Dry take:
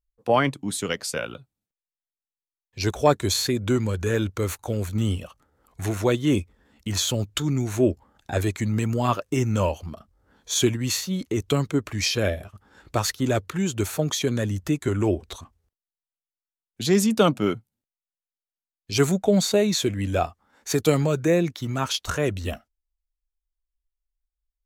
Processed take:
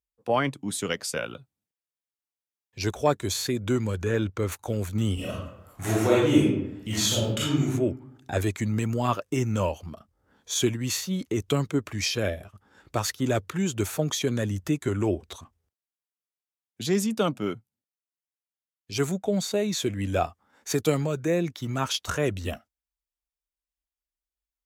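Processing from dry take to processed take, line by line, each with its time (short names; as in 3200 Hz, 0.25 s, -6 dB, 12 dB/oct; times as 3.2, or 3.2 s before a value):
4.03–4.52 high shelf 6100 Hz -11.5 dB
5.14–7.62 reverb throw, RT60 0.83 s, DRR -9 dB
whole clip: HPF 70 Hz; notch 4200 Hz, Q 21; vocal rider within 3 dB 0.5 s; gain -4.5 dB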